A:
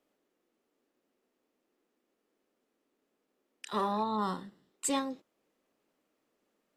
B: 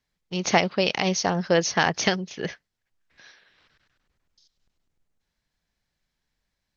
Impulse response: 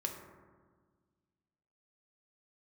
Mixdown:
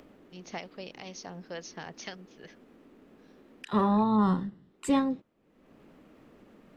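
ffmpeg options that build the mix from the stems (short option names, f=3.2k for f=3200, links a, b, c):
-filter_complex "[0:a]bass=f=250:g=14,treble=f=4k:g=-13,acompressor=mode=upward:threshold=-44dB:ratio=2.5,volume=3dB[a];[1:a]acrossover=split=570[b][c];[b]aeval=exprs='val(0)*(1-0.5/2+0.5/2*cos(2*PI*2.2*n/s))':c=same[d];[c]aeval=exprs='val(0)*(1-0.5/2-0.5/2*cos(2*PI*2.2*n/s))':c=same[e];[d][e]amix=inputs=2:normalize=0,volume=-17dB[f];[a][f]amix=inputs=2:normalize=0"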